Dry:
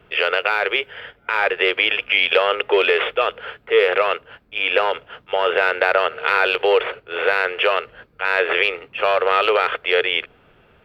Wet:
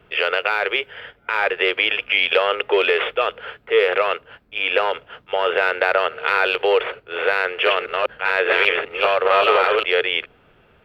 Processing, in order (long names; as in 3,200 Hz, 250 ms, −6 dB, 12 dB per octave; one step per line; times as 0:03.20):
0:07.47–0:09.87: delay that plays each chunk backwards 197 ms, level −1 dB
level −1 dB